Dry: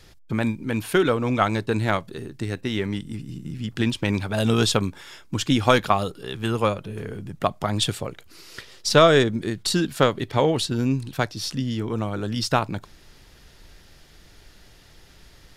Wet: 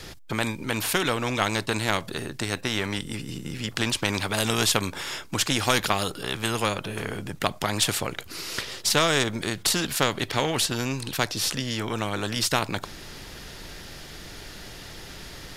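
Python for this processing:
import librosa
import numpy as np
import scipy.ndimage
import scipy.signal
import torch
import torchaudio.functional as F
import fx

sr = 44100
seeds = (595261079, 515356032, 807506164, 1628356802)

y = fx.spectral_comp(x, sr, ratio=2.0)
y = y * librosa.db_to_amplitude(-1.5)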